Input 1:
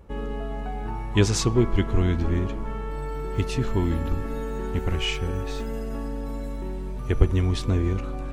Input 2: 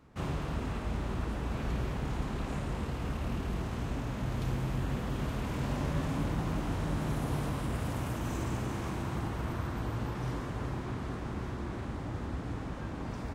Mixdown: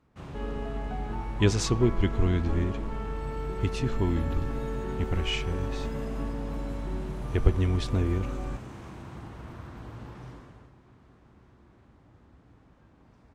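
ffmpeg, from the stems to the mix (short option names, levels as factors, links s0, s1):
-filter_complex "[0:a]adelay=250,volume=0.708[s0];[1:a]volume=0.422,afade=t=out:st=10.16:d=0.55:silence=0.237137[s1];[s0][s1]amix=inputs=2:normalize=0,highshelf=f=11000:g=-10"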